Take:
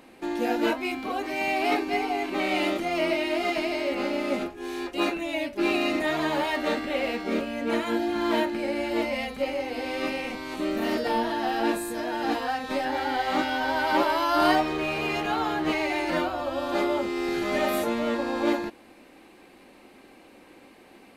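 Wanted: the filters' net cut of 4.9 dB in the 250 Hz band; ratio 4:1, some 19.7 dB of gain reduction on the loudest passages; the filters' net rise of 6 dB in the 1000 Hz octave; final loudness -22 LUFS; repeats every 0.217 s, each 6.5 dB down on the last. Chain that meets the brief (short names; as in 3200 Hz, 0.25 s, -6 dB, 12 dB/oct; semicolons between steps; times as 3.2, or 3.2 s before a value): bell 250 Hz -8 dB; bell 1000 Hz +8.5 dB; compressor 4:1, threshold -39 dBFS; feedback echo 0.217 s, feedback 47%, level -6.5 dB; gain +16 dB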